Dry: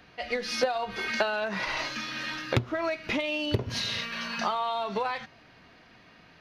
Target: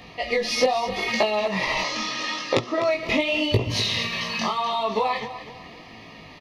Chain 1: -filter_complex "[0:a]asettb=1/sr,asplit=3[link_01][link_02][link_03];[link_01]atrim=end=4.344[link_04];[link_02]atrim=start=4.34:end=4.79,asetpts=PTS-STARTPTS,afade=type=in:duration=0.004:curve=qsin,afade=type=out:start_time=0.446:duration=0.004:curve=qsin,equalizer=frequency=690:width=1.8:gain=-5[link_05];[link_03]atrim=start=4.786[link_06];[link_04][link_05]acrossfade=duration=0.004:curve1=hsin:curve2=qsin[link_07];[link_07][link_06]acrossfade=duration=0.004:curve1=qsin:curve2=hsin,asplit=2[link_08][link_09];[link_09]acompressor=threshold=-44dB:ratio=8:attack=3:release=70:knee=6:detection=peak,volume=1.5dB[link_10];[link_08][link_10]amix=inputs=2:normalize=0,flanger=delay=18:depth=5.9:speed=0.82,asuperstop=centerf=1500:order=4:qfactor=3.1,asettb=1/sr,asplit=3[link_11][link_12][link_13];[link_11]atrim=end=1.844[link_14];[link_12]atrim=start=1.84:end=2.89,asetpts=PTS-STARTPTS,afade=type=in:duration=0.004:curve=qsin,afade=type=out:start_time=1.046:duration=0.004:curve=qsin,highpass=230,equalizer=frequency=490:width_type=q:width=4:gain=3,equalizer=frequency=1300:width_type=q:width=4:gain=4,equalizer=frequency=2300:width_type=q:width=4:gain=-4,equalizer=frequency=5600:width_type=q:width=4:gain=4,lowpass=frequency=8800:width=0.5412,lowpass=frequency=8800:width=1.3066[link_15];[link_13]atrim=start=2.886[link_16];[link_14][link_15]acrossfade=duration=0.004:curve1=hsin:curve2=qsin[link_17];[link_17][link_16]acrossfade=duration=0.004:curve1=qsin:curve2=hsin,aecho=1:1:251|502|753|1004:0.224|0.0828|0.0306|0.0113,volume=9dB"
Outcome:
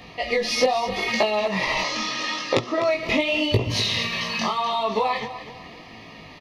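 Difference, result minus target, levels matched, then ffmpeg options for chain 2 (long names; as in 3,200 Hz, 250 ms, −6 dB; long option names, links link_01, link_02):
downward compressor: peak gain reduction −6.5 dB
-filter_complex "[0:a]asettb=1/sr,asplit=3[link_01][link_02][link_03];[link_01]atrim=end=4.344[link_04];[link_02]atrim=start=4.34:end=4.79,asetpts=PTS-STARTPTS,afade=type=in:duration=0.004:curve=qsin,afade=type=out:start_time=0.446:duration=0.004:curve=qsin,equalizer=frequency=690:width=1.8:gain=-5[link_05];[link_03]atrim=start=4.786[link_06];[link_04][link_05]acrossfade=duration=0.004:curve1=hsin:curve2=qsin[link_07];[link_07][link_06]acrossfade=duration=0.004:curve1=qsin:curve2=hsin,asplit=2[link_08][link_09];[link_09]acompressor=threshold=-51.5dB:ratio=8:attack=3:release=70:knee=6:detection=peak,volume=1.5dB[link_10];[link_08][link_10]amix=inputs=2:normalize=0,flanger=delay=18:depth=5.9:speed=0.82,asuperstop=centerf=1500:order=4:qfactor=3.1,asettb=1/sr,asplit=3[link_11][link_12][link_13];[link_11]atrim=end=1.844[link_14];[link_12]atrim=start=1.84:end=2.89,asetpts=PTS-STARTPTS,afade=type=in:duration=0.004:curve=qsin,afade=type=out:start_time=1.046:duration=0.004:curve=qsin,highpass=230,equalizer=frequency=490:width_type=q:width=4:gain=3,equalizer=frequency=1300:width_type=q:width=4:gain=4,equalizer=frequency=2300:width_type=q:width=4:gain=-4,equalizer=frequency=5600:width_type=q:width=4:gain=4,lowpass=frequency=8800:width=0.5412,lowpass=frequency=8800:width=1.3066[link_15];[link_13]atrim=start=2.886[link_16];[link_14][link_15]acrossfade=duration=0.004:curve1=hsin:curve2=qsin[link_17];[link_17][link_16]acrossfade=duration=0.004:curve1=qsin:curve2=hsin,aecho=1:1:251|502|753|1004:0.224|0.0828|0.0306|0.0113,volume=9dB"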